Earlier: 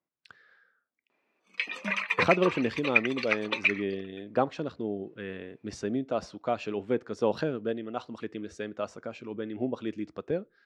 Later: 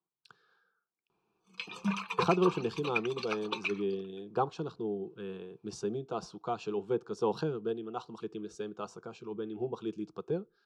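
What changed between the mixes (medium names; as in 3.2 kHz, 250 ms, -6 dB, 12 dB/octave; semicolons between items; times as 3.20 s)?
background: remove high-pass 310 Hz 12 dB/octave; master: add static phaser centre 390 Hz, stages 8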